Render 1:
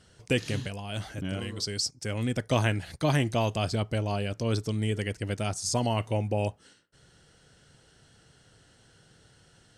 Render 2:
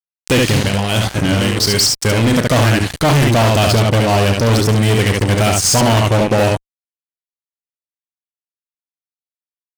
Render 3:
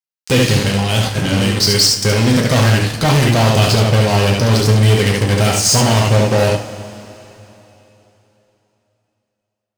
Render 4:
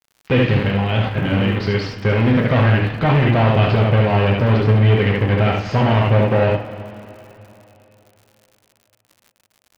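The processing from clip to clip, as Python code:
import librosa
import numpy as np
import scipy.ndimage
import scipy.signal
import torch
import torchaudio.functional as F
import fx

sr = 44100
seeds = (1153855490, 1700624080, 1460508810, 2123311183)

y1 = fx.room_early_taps(x, sr, ms=(35, 71), db=(-13.0, -5.0))
y1 = fx.fuzz(y1, sr, gain_db=33.0, gate_db=-40.0)
y1 = y1 * 10.0 ** (3.5 / 20.0)
y2 = fx.peak_eq(y1, sr, hz=4700.0, db=3.5, octaves=0.82)
y2 = fx.rev_double_slope(y2, sr, seeds[0], early_s=0.32, late_s=3.4, knee_db=-17, drr_db=2.5)
y2 = y2 * 10.0 ** (-3.0 / 20.0)
y3 = scipy.signal.sosfilt(scipy.signal.butter(4, 2700.0, 'lowpass', fs=sr, output='sos'), y2)
y3 = fx.dmg_crackle(y3, sr, seeds[1], per_s=110.0, level_db=-36.0)
y3 = y3 * 10.0 ** (-2.0 / 20.0)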